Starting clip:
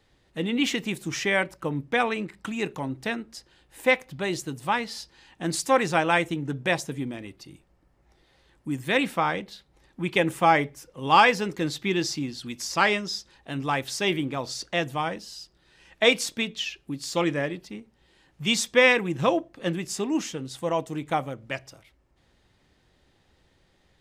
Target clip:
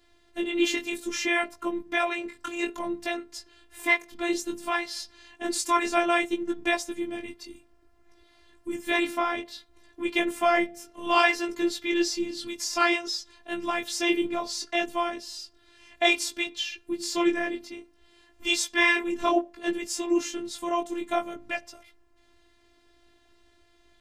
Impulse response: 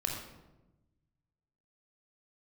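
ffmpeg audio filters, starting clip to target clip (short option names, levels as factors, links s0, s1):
-filter_complex "[0:a]bandreject=f=273.5:t=h:w=4,bandreject=f=547:t=h:w=4,bandreject=f=820.5:t=h:w=4,bandreject=f=1094:t=h:w=4,asplit=2[s0][s1];[s1]acompressor=threshold=0.0224:ratio=5,volume=0.75[s2];[s0][s2]amix=inputs=2:normalize=0,flanger=delay=16:depth=6:speed=0.6,afftfilt=real='hypot(re,im)*cos(PI*b)':imag='0':win_size=512:overlap=0.75,volume=1.58"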